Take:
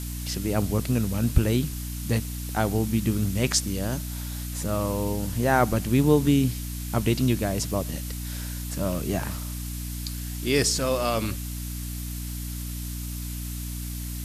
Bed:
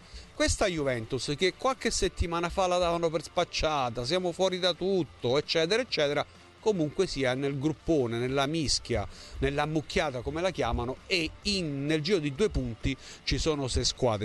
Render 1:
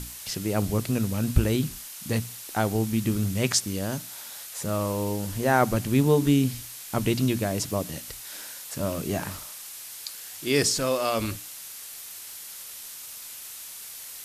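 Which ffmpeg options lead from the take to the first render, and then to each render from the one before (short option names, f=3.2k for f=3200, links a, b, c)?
-af "bandreject=f=60:t=h:w=6,bandreject=f=120:t=h:w=6,bandreject=f=180:t=h:w=6,bandreject=f=240:t=h:w=6,bandreject=f=300:t=h:w=6"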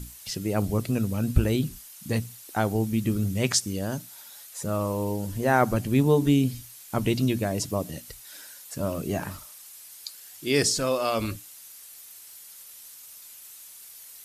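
-af "afftdn=nr=9:nf=-41"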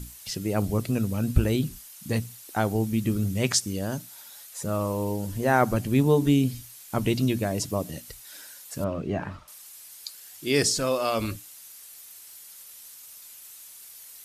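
-filter_complex "[0:a]asettb=1/sr,asplit=3[a][b][c];[a]atrim=end=8.844[d];[b]atrim=start=8.84:end=9.48,asetpts=PTS-STARTPTS,afade=t=in:d=0.004:c=qsin,afade=t=out:st=0.636:d=0.004:c=qsin,lowpass=2.7k[e];[c]atrim=start=9.476[f];[d][e]acrossfade=d=0.004:c1=hsin:c2=qsin[g];[g][f]acrossfade=d=0.004:c1=qsin:c2=hsin"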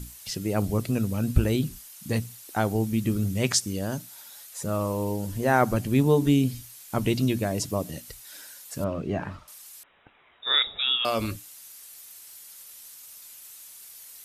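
-filter_complex "[0:a]asettb=1/sr,asplit=3[a][b][c];[a]atrim=end=9.834[d];[b]atrim=start=9.83:end=11.05,asetpts=PTS-STARTPTS,afade=t=in:d=0.004:c=qsin,afade=t=out:st=1.216:d=0.004:c=qsin,lowpass=f=3.3k:t=q:w=0.5098,lowpass=f=3.3k:t=q:w=0.6013,lowpass=f=3.3k:t=q:w=0.9,lowpass=f=3.3k:t=q:w=2.563,afreqshift=-3900[e];[c]atrim=start=11.046[f];[d][e]acrossfade=d=0.004:c1=hsin:c2=qsin[g];[g][f]acrossfade=d=0.004:c1=qsin:c2=hsin"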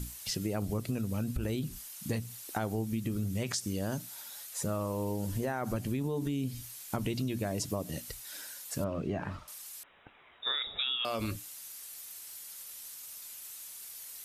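-af "alimiter=limit=-17dB:level=0:latency=1:release=37,acompressor=threshold=-30dB:ratio=6"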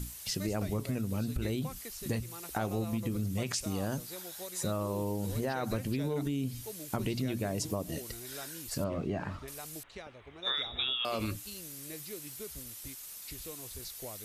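-filter_complex "[1:a]volume=-19dB[a];[0:a][a]amix=inputs=2:normalize=0"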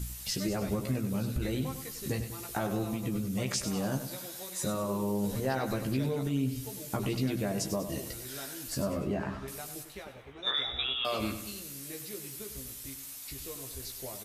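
-filter_complex "[0:a]asplit=2[a][b];[b]adelay=15,volume=-4.5dB[c];[a][c]amix=inputs=2:normalize=0,aecho=1:1:98|196|294|392|490:0.316|0.149|0.0699|0.0328|0.0154"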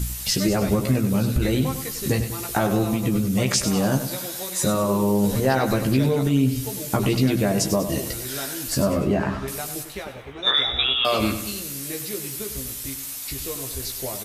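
-af "volume=11dB"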